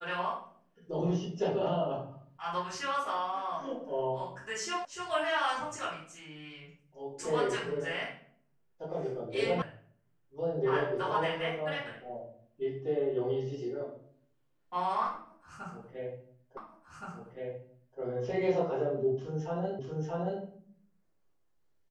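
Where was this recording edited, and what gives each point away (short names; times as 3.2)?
4.85 sound cut off
9.62 sound cut off
16.57 repeat of the last 1.42 s
19.79 repeat of the last 0.63 s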